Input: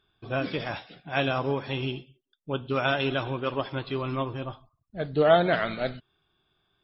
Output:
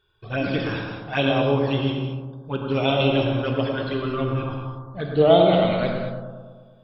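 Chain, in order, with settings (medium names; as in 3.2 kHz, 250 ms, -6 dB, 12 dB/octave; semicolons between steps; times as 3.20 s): touch-sensitive flanger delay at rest 2.1 ms, full sweep at -22.5 dBFS; bucket-brigade echo 109 ms, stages 1024, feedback 65%, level -5 dB; gated-style reverb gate 250 ms flat, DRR 3 dB; trim +5 dB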